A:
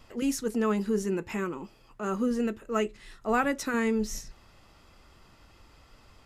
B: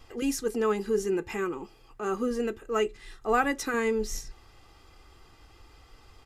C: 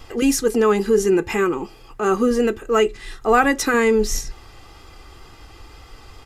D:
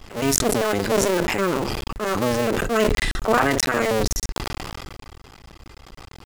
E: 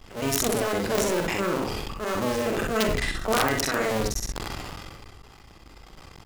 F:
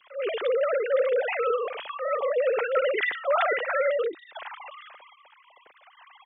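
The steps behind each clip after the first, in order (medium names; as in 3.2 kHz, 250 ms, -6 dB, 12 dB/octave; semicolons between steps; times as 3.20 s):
comb 2.5 ms, depth 52%
in parallel at -1 dB: peak limiter -21.5 dBFS, peak gain reduction 8 dB; on the sum: wow and flutter 19 cents; trim +6 dB
cycle switcher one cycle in 2, muted; decay stretcher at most 20 dB/s; trim -2 dB
multi-tap echo 45/64 ms -7/-4.5 dB; integer overflow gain 6.5 dB; trim -6 dB
formants replaced by sine waves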